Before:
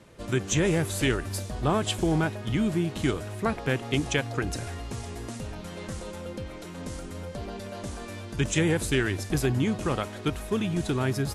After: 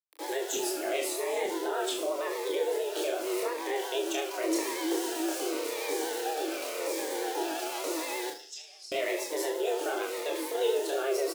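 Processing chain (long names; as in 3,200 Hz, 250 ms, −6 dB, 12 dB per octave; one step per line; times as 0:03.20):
stylus tracing distortion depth 0.031 ms
bit reduction 7 bits
0:02.43–0:03.76: downward compressor, threshold −30 dBFS, peak gain reduction 9.5 dB
frequency shifter +270 Hz
0:08.30–0:08.92: resonant band-pass 5,200 Hz, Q 13
speech leveller within 3 dB 0.5 s
0:00.57–0:01.46: reverse
brickwall limiter −22.5 dBFS, peak gain reduction 11.5 dB
double-tracking delay 27 ms −3 dB
flutter between parallel walls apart 6.8 metres, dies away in 0.4 s
pitch vibrato 8.6 Hz 53 cents
phaser whose notches keep moving one way falling 0.88 Hz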